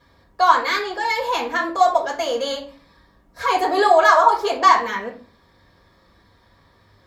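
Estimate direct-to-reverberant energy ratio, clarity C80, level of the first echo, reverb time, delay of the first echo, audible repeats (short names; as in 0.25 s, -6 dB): -4.5 dB, 14.5 dB, none, 0.40 s, none, none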